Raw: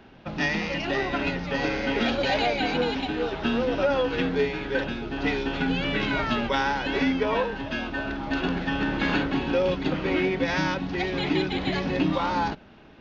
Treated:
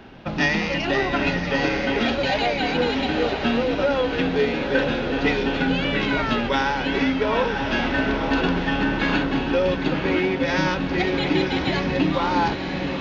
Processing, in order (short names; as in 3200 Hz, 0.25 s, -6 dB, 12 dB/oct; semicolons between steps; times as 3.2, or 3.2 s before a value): diffused feedback echo 0.951 s, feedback 55%, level -9 dB; vocal rider within 4 dB 0.5 s; gain +3.5 dB